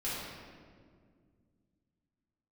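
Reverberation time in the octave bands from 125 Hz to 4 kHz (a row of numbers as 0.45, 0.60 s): 3.2, 3.0, 2.2, 1.7, 1.4, 1.2 s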